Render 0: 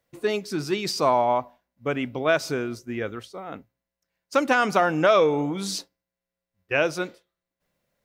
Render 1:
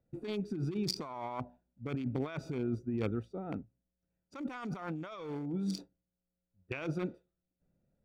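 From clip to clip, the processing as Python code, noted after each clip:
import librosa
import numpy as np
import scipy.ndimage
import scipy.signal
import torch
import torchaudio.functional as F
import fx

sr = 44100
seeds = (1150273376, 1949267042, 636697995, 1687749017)

y = fx.wiener(x, sr, points=41)
y = y + 0.42 * np.pad(y, (int(0.9 * sr / 1000.0), 0))[:len(y)]
y = fx.over_compress(y, sr, threshold_db=-33.0, ratio=-1.0)
y = y * librosa.db_to_amplitude(-4.5)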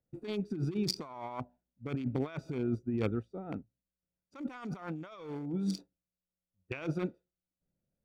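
y = fx.upward_expand(x, sr, threshold_db=-54.0, expansion=1.5)
y = y * librosa.db_to_amplitude(3.0)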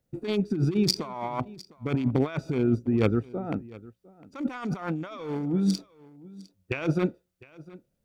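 y = x + 10.0 ** (-21.0 / 20.0) * np.pad(x, (int(706 * sr / 1000.0), 0))[:len(x)]
y = y * librosa.db_to_amplitude(9.0)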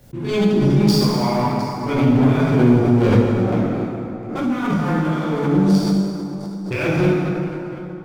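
y = fx.leveller(x, sr, passes=3)
y = fx.rev_plate(y, sr, seeds[0], rt60_s=3.0, hf_ratio=0.55, predelay_ms=0, drr_db=-10.0)
y = fx.pre_swell(y, sr, db_per_s=55.0)
y = y * librosa.db_to_amplitude(-10.0)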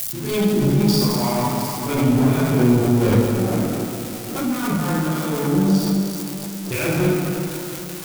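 y = x + 0.5 * 10.0 ** (-16.0 / 20.0) * np.diff(np.sign(x), prepend=np.sign(x[:1]))
y = y * librosa.db_to_amplitude(-2.0)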